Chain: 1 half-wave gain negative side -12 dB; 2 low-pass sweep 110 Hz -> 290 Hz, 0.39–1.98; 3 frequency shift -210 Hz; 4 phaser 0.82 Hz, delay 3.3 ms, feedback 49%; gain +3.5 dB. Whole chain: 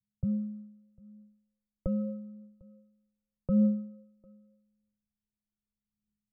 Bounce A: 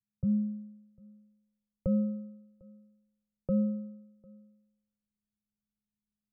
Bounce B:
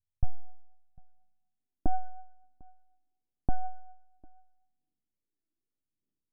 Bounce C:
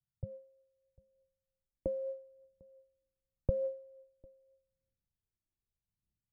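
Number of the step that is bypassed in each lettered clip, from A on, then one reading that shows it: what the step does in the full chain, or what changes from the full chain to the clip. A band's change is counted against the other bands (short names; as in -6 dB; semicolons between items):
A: 4, crest factor change -2.5 dB; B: 3, momentary loudness spread change -5 LU; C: 1, distortion -4 dB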